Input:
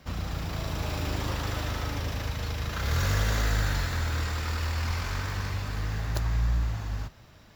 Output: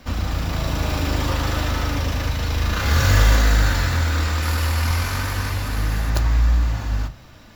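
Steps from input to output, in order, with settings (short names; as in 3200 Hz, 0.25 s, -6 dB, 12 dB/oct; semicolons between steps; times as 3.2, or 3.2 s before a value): 2.48–3.36 doubler 41 ms -4 dB; 4.42–6.1 bell 11000 Hz +12.5 dB 0.48 oct; reverb RT60 0.25 s, pre-delay 3 ms, DRR 7.5 dB; gain +7.5 dB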